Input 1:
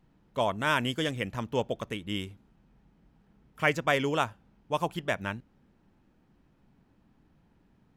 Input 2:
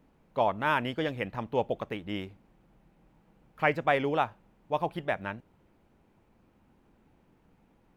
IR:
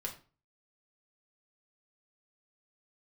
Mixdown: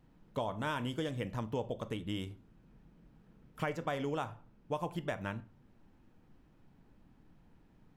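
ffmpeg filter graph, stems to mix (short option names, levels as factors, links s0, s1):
-filter_complex "[0:a]volume=0.794,asplit=2[s0][s1];[s1]volume=0.224[s2];[1:a]aemphasis=mode=reproduction:type=bsi,volume=0.158,asplit=3[s3][s4][s5];[s4]volume=0.562[s6];[s5]apad=whole_len=351318[s7];[s0][s7]sidechaincompress=threshold=0.00501:ratio=8:attack=50:release=982[s8];[2:a]atrim=start_sample=2205[s9];[s2][s6]amix=inputs=2:normalize=0[s10];[s10][s9]afir=irnorm=-1:irlink=0[s11];[s8][s3][s11]amix=inputs=3:normalize=0,acompressor=threshold=0.0224:ratio=3"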